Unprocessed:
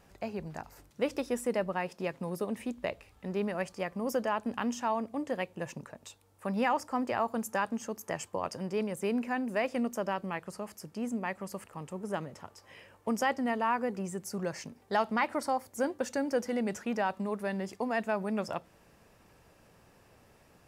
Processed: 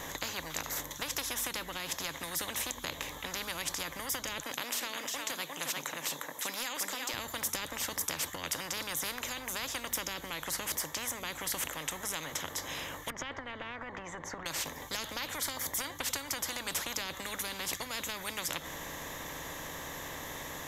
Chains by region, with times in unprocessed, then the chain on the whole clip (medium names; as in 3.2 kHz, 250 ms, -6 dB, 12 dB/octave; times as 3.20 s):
4.39–7.14 s: high-pass 490 Hz + delay 355 ms -10 dB
13.10–14.46 s: low-pass 1.5 kHz + compression 5:1, threshold -35 dBFS
whole clip: rippled EQ curve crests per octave 1.1, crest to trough 13 dB; compression 3:1, threshold -30 dBFS; spectrum-flattening compressor 10:1; trim +4.5 dB